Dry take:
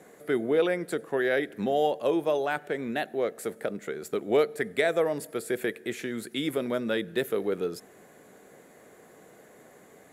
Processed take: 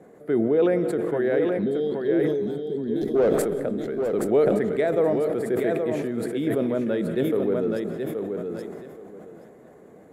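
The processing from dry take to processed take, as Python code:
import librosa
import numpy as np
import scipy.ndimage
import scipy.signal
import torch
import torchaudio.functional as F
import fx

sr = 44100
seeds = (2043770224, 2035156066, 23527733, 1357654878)

y = fx.leveller(x, sr, passes=3, at=(3.01, 3.42))
y = fx.tilt_shelf(y, sr, db=9.0, hz=1300.0)
y = fx.spec_box(y, sr, start_s=1.62, length_s=1.53, low_hz=470.0, high_hz=3100.0, gain_db=-22)
y = fx.high_shelf_res(y, sr, hz=5500.0, db=-8.0, q=3.0, at=(1.56, 2.2))
y = fx.echo_feedback(y, sr, ms=825, feedback_pct=20, wet_db=-6.0)
y = fx.rev_freeverb(y, sr, rt60_s=1.7, hf_ratio=0.8, predelay_ms=115, drr_db=14.0)
y = fx.sustainer(y, sr, db_per_s=28.0)
y = y * librosa.db_to_amplitude(-4.0)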